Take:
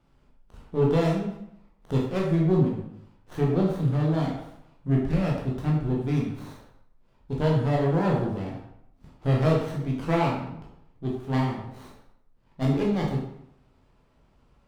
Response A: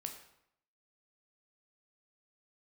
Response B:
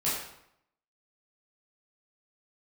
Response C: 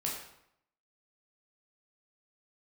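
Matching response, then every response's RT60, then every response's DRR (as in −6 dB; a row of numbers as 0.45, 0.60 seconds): C; 0.75, 0.75, 0.75 seconds; 4.0, −9.0, −3.0 decibels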